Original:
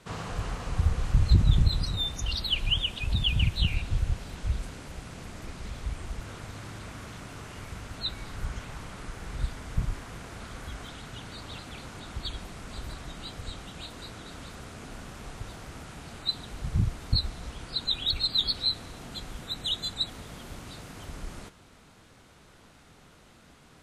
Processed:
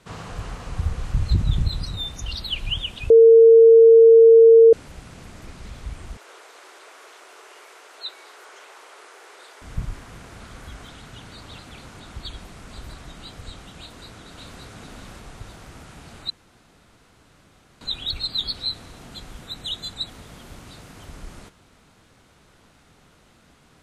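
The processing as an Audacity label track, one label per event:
3.100000	4.730000	bleep 455 Hz -6.5 dBFS
6.170000	9.620000	elliptic high-pass 380 Hz, stop band 60 dB
13.800000	14.620000	echo throw 0.57 s, feedback 25%, level -3 dB
16.300000	17.810000	room tone

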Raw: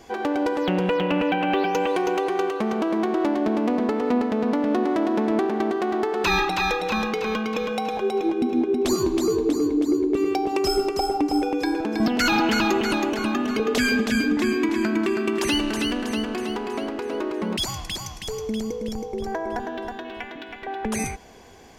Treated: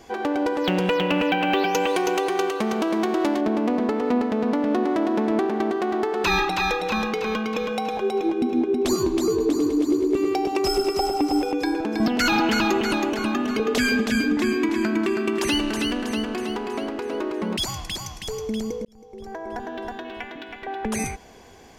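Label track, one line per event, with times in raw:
0.640000	3.410000	high shelf 3000 Hz +9.5 dB
9.300000	11.520000	thinning echo 0.101 s, feedback 75%, level -8 dB
18.850000	19.910000	fade in

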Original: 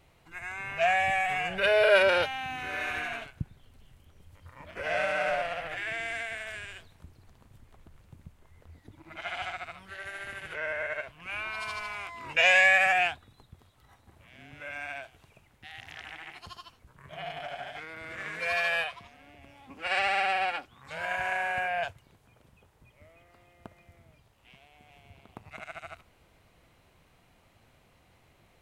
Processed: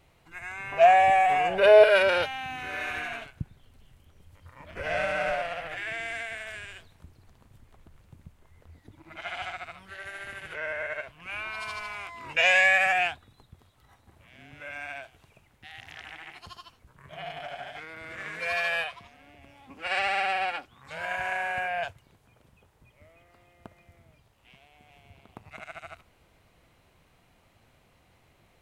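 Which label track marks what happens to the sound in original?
0.720000	1.840000	band shelf 530 Hz +9.5 dB 2.3 oct
4.700000	5.320000	low shelf 160 Hz +10 dB

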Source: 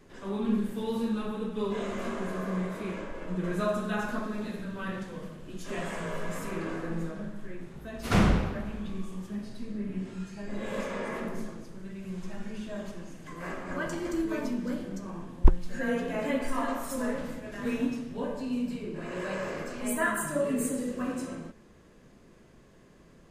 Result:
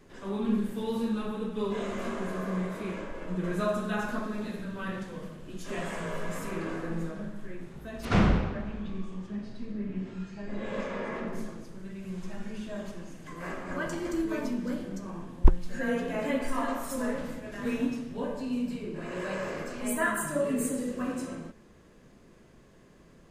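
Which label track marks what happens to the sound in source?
8.050000	11.330000	air absorption 92 m

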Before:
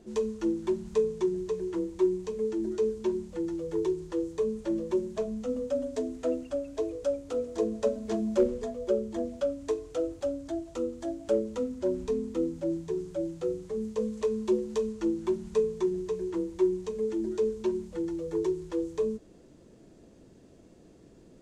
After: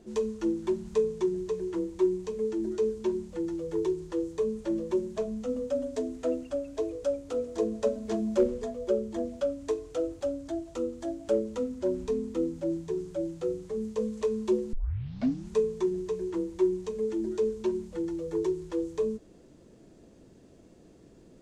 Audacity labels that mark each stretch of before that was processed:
14.730000	14.730000	tape start 0.77 s

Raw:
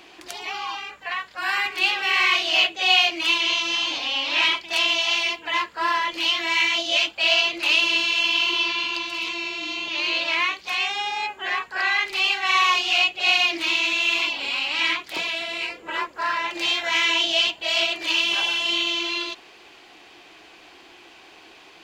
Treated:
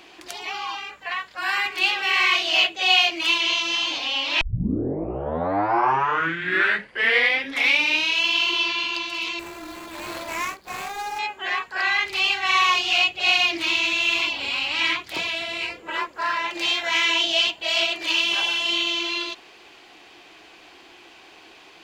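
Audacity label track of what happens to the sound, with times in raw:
4.410000	4.410000	tape start 3.86 s
9.390000	11.190000	median filter over 15 samples
11.870000	15.800000	bell 92 Hz +14 dB 1.1 oct

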